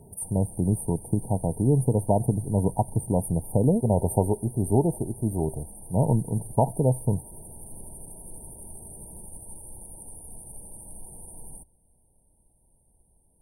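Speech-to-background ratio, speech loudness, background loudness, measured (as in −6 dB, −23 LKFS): 17.5 dB, −25.5 LKFS, −43.0 LKFS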